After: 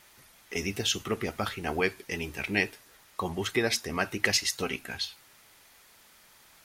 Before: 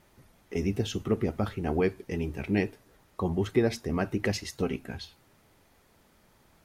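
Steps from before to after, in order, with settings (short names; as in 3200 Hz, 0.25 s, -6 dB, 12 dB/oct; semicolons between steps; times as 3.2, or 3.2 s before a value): tilt shelf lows -9.5 dB, about 840 Hz; gain +2 dB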